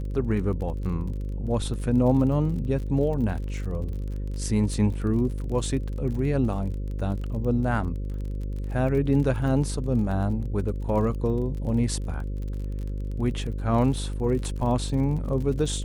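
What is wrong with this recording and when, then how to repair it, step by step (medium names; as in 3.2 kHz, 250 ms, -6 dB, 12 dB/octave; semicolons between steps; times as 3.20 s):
buzz 50 Hz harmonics 11 -30 dBFS
crackle 38 per s -34 dBFS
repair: de-click; de-hum 50 Hz, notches 11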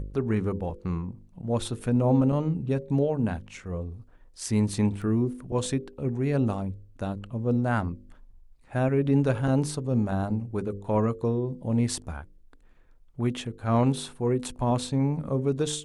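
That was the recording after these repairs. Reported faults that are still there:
nothing left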